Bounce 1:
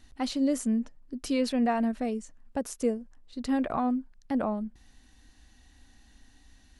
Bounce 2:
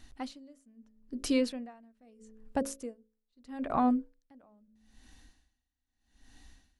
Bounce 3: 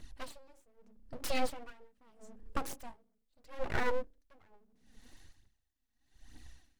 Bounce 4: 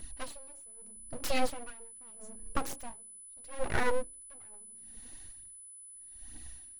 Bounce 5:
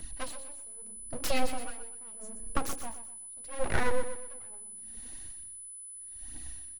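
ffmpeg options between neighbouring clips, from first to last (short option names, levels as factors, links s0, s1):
-af "bandreject=f=54.68:t=h:w=4,bandreject=f=109.36:t=h:w=4,bandreject=f=164.04:t=h:w=4,bandreject=f=218.72:t=h:w=4,bandreject=f=273.4:t=h:w=4,bandreject=f=328.08:t=h:w=4,bandreject=f=382.76:t=h:w=4,bandreject=f=437.44:t=h:w=4,bandreject=f=492.12:t=h:w=4,bandreject=f=546.8:t=h:w=4,bandreject=f=601.48:t=h:w=4,aeval=exprs='val(0)*pow(10,-34*(0.5-0.5*cos(2*PI*0.78*n/s))/20)':c=same,volume=1.26"
-af "aphaser=in_gain=1:out_gain=1:delay=4.9:decay=0.6:speed=1.1:type=triangular,aeval=exprs='abs(val(0))':c=same,volume=0.794"
-af "aeval=exprs='val(0)+0.00282*sin(2*PI*10000*n/s)':c=same,volume=1.41"
-filter_complex "[0:a]aecho=1:1:124|248|372|496:0.251|0.0879|0.0308|0.0108,acrossover=split=170[s0][s1];[s1]acompressor=threshold=0.0316:ratio=6[s2];[s0][s2]amix=inputs=2:normalize=0,volume=1.41"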